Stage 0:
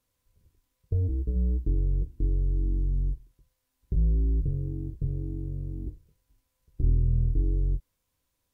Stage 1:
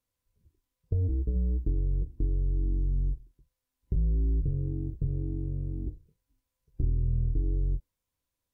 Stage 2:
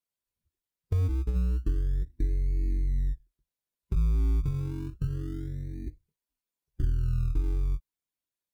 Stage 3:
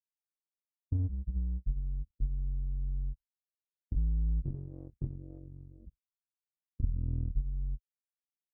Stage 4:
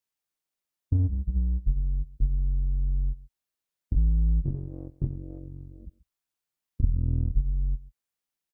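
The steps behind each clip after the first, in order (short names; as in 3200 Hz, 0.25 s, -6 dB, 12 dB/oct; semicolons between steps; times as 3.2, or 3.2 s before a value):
spectral noise reduction 9 dB; compressor, threshold -24 dBFS, peak gain reduction 6.5 dB; gain +1 dB
per-bin expansion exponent 1.5; in parallel at -10 dB: decimation with a swept rate 29×, swing 60% 0.29 Hz
spectral gate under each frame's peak -10 dB strong; power-law curve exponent 2
echo 0.134 s -19.5 dB; gain +7.5 dB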